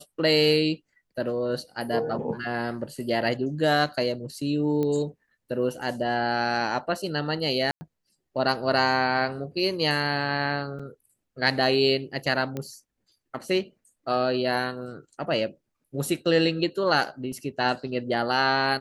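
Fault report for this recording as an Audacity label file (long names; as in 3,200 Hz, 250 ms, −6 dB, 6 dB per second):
4.830000	4.830000	click −17 dBFS
7.710000	7.810000	drop-out 100 ms
10.790000	10.800000	drop-out 5.3 ms
12.570000	12.570000	click −18 dBFS
17.320000	17.320000	drop-out 2 ms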